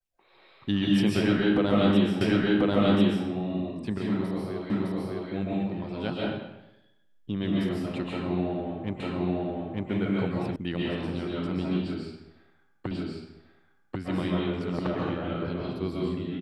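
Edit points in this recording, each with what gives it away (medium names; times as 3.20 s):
2.21 s: repeat of the last 1.04 s
4.70 s: repeat of the last 0.61 s
9.00 s: repeat of the last 0.9 s
10.56 s: sound stops dead
12.91 s: repeat of the last 1.09 s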